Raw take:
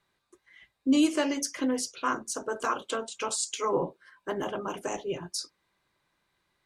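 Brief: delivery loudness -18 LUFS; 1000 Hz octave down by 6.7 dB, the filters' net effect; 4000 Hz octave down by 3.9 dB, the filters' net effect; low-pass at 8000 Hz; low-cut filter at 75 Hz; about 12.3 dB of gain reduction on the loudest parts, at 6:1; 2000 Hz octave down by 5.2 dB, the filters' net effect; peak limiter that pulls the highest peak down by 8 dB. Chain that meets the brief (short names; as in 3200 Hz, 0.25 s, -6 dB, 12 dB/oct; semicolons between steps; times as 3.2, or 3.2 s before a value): HPF 75 Hz; LPF 8000 Hz; bell 1000 Hz -7 dB; bell 2000 Hz -3.5 dB; bell 4000 Hz -3.5 dB; compressor 6:1, threshold -33 dBFS; gain +23.5 dB; limiter -8 dBFS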